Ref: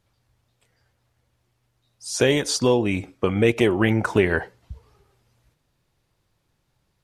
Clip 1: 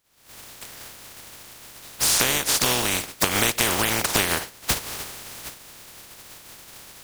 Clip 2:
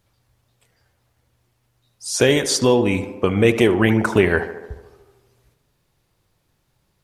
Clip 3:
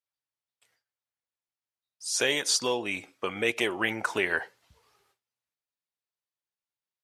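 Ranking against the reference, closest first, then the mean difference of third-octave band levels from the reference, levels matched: 2, 3, 1; 2.5, 6.0, 16.5 dB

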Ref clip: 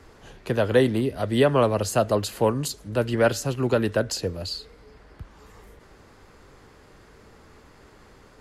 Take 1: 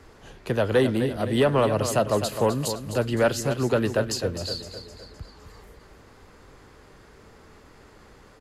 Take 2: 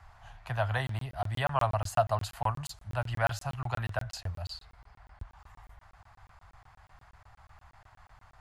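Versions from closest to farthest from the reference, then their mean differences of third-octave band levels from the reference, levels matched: 1, 2; 3.0, 5.5 dB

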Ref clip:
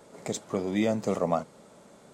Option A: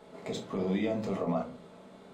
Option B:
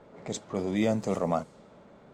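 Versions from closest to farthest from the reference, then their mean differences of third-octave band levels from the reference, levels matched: B, A; 2.0, 4.5 dB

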